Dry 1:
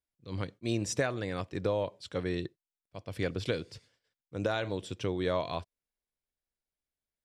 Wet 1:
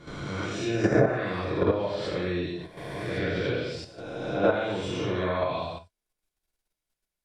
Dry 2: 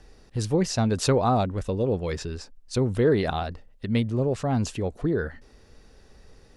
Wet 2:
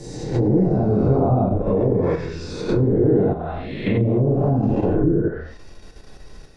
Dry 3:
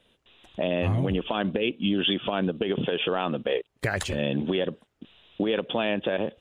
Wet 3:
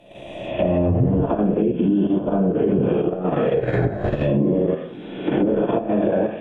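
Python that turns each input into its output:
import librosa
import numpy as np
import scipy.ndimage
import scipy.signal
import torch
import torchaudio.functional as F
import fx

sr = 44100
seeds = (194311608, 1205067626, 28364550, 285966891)

p1 = fx.spec_swells(x, sr, rise_s=1.31)
p2 = fx.rev_gated(p1, sr, seeds[0], gate_ms=270, shape='falling', drr_db=-7.0)
p3 = fx.env_lowpass_down(p2, sr, base_hz=440.0, full_db=-11.5)
p4 = fx.level_steps(p3, sr, step_db=20)
p5 = p3 + F.gain(torch.from_numpy(p4), 3.0).numpy()
y = F.gain(torch.from_numpy(p5), -7.0).numpy()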